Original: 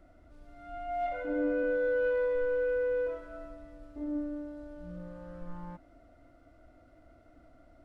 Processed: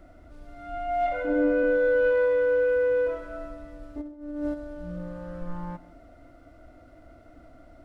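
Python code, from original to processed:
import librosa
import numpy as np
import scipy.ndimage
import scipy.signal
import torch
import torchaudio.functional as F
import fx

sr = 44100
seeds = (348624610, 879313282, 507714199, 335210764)

y = fx.highpass(x, sr, hz=51.0, slope=12, at=(2.12, 3.07))
y = fx.over_compress(y, sr, threshold_db=-41.0, ratio=-0.5, at=(4.0, 4.53), fade=0.02)
y = y + 10.0 ** (-21.0 / 20.0) * np.pad(y, (int(154 * sr / 1000.0), 0))[:len(y)]
y = y * 10.0 ** (7.5 / 20.0)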